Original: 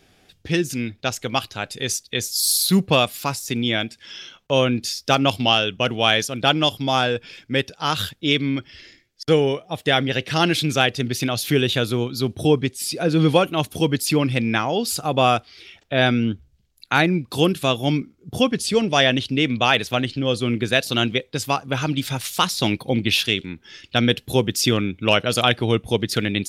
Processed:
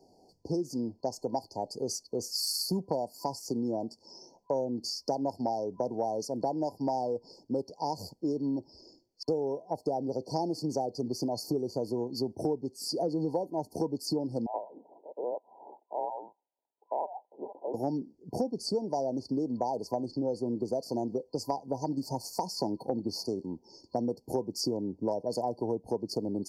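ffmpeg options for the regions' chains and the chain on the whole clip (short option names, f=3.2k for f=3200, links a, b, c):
-filter_complex "[0:a]asettb=1/sr,asplit=3[a][b][c];[a]atrim=end=14.464[d];[b]atrim=start=14.46:end=17.74,asetpts=PTS-STARTPTS,afade=t=in:d=0.004:c=qsin,afade=t=out:st=3.276:d=0.004:c=qsin,lowpass=f=2.6k:t=q:w=0.5098,lowpass=f=2.6k:t=q:w=0.6013,lowpass=f=2.6k:t=q:w=0.9,lowpass=f=2.6k:t=q:w=2.563,afreqshift=-3100,highpass=280[e];[c]atrim=start=17.736[f];[d][e]acrossfade=d=0.004:c1=hsin:c2=qsin[g];[g][f]acrossfade=d=0.004:c1=qsin:c2=hsin,afftfilt=real='re*(1-between(b*sr/4096,1000,4300))':imag='im*(1-between(b*sr/4096,1000,4300))':win_size=4096:overlap=0.75,acrossover=split=220 4400:gain=0.2 1 0.178[h][i][j];[h][i][j]amix=inputs=3:normalize=0,acompressor=threshold=-28dB:ratio=6"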